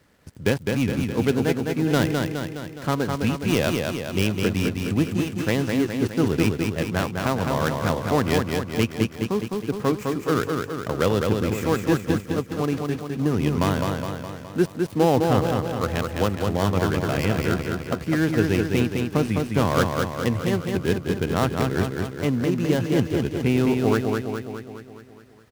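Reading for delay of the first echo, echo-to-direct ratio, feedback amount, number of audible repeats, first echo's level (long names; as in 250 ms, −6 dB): 208 ms, −2.0 dB, 58%, 7, −4.0 dB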